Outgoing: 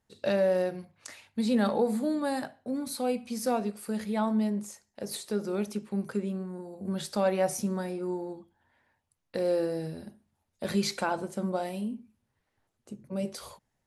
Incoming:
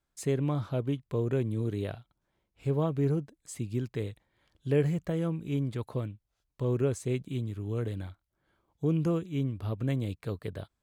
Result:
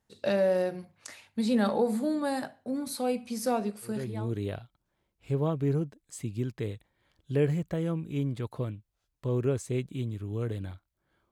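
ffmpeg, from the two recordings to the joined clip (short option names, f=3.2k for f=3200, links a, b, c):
-filter_complex "[0:a]apad=whole_dur=11.31,atrim=end=11.31,atrim=end=4.33,asetpts=PTS-STARTPTS[a];[1:a]atrim=start=1.17:end=8.67,asetpts=PTS-STARTPTS[b];[a][b]acrossfade=d=0.52:c1=tri:c2=tri"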